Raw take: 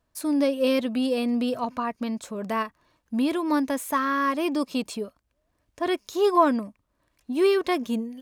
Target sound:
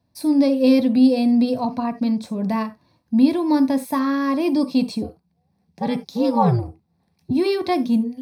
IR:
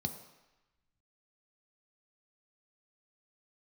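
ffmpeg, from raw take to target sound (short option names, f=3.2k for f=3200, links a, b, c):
-filter_complex "[0:a]asettb=1/sr,asplit=3[a][b][c];[a]atrim=end=5.024[d];[b]atrim=start=5.02:end=7.31,asetpts=PTS-STARTPTS,afade=t=in:d=0.004:c=qsin,afade=t=out:st=2.286:d=0.004:c=qsin,aeval=exprs='val(0)*sin(2*PI*120*n/s)':c=same[e];[c]atrim=start=7.306[f];[d][e]acrossfade=d=0.004:c1=hsin:c2=qsin[g];[g][f]acrossfade=d=0.004:c1=qsin:c2=hsin[h];[1:a]atrim=start_sample=2205,atrim=end_sample=3969[i];[h][i]afir=irnorm=-1:irlink=0"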